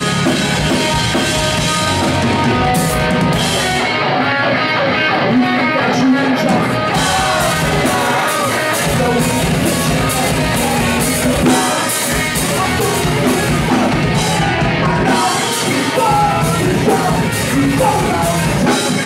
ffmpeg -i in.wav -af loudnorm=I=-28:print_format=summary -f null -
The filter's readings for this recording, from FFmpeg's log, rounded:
Input Integrated:    -13.8 LUFS
Input True Peak:      -2.7 dBTP
Input LRA:             0.6 LU
Input Threshold:     -23.8 LUFS